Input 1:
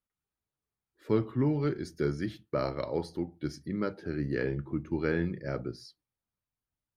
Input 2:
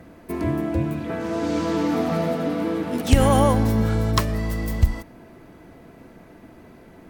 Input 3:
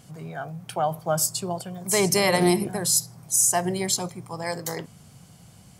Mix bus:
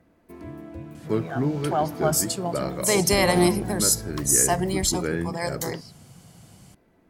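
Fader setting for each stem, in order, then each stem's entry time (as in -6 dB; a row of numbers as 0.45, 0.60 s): +2.0, -15.0, +0.5 dB; 0.00, 0.00, 0.95 s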